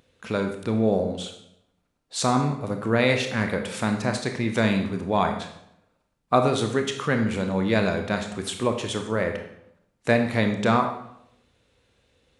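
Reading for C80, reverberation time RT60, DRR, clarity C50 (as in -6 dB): 10.5 dB, 0.75 s, 4.5 dB, 7.5 dB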